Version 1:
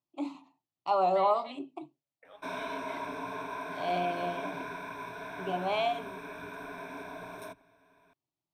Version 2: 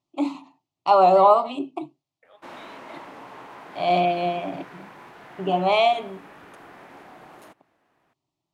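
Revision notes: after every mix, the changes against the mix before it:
first voice +11.0 dB; background: remove rippled EQ curve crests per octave 1.6, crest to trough 17 dB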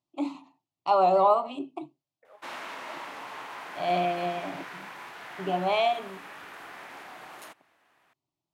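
first voice -6.0 dB; second voice: add low-pass 1.3 kHz; background: add tilt shelf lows -7.5 dB, about 740 Hz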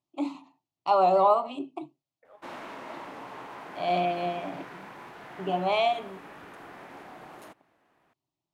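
background: add tilt shelf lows +7.5 dB, about 740 Hz

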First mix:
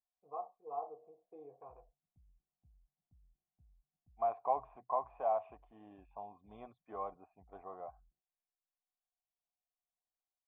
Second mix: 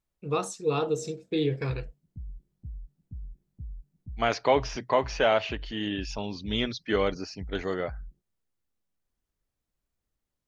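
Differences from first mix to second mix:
first voice: remove band-pass filter 620 Hz, Q 1.2; master: remove cascade formant filter a

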